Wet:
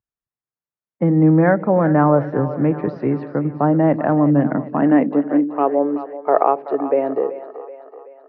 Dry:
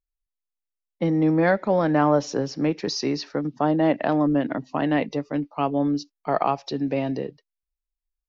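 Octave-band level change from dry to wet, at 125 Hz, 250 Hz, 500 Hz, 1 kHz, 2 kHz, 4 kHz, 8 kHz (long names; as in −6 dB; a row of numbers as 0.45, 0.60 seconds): +9.0 dB, +6.0 dB, +6.0 dB, +5.5 dB, +2.0 dB, below −20 dB, can't be measured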